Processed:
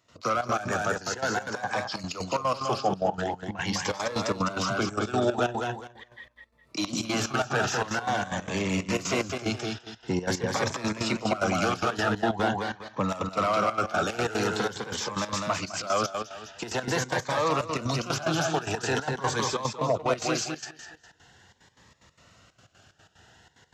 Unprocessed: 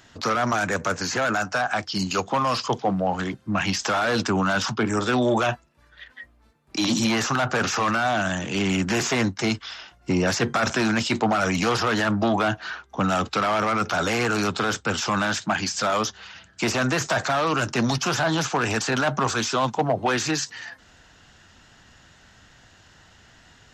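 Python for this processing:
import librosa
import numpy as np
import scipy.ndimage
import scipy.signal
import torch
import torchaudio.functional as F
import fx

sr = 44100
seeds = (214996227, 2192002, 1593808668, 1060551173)

y = scipy.signal.sosfilt(scipy.signal.butter(2, 83.0, 'highpass', fs=sr, output='sos'), x)
y = fx.low_shelf(y, sr, hz=140.0, db=3.0)
y = fx.echo_feedback(y, sr, ms=206, feedback_pct=29, wet_db=-4.5)
y = fx.step_gate(y, sr, bpm=184, pattern='.x.xx.x.xxxx', floor_db=-12.0, edge_ms=4.5)
y = fx.graphic_eq(y, sr, hz=(250, 500, 1000), db=(-4, 5, 4))
y = fx.notch_cascade(y, sr, direction='rising', hz=0.45)
y = y * 10.0 ** (-4.5 / 20.0)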